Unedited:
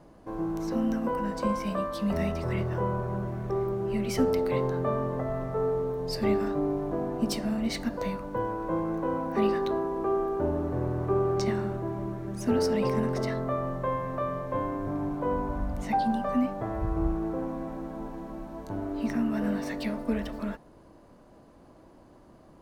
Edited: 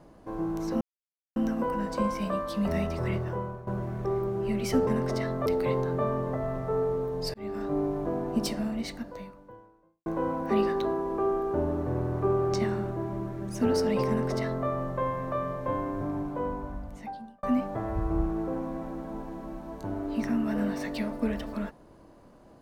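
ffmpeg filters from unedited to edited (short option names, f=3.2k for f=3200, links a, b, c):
-filter_complex "[0:a]asplit=8[a][b][c][d][e][f][g][h];[a]atrim=end=0.81,asetpts=PTS-STARTPTS,afade=t=out:st=0.806:d=0.004:c=hsin,apad=pad_dur=0.55[i];[b]atrim=start=0.81:end=3.12,asetpts=PTS-STARTPTS,afade=t=in:d=0.004:c=hsin,afade=t=out:st=1.76:d=0.55:silence=0.199526[j];[c]atrim=start=3.12:end=4.322,asetpts=PTS-STARTPTS,afade=t=in:d=0.004:c=hsin:silence=0.199526[k];[d]atrim=start=12.938:end=13.532[l];[e]atrim=start=4.318:end=6.2,asetpts=PTS-STARTPTS,afade=t=out:st=1.878:d=0.004:c=hsin[m];[f]atrim=start=6.2:end=8.92,asetpts=PTS-STARTPTS,afade=t=in:d=0.43,afade=t=out:st=1.17:d=1.55:c=qua[n];[g]atrim=start=8.92:end=16.29,asetpts=PTS-STARTPTS,afade=t=in:d=0.004:c=hsin,afade=t=out:st=5.95:d=1.42[o];[h]atrim=start=16.29,asetpts=PTS-STARTPTS,afade=t=in:d=0.004:c=hsin[p];[i][j][k]concat=n=3:v=0:a=1[q];[q][l]acrossfade=d=0.004:c1=hsin:c2=hsin[r];[m][n][o][p]concat=n=4:v=0:a=1[s];[r][s]acrossfade=d=0.004:c1=hsin:c2=hsin"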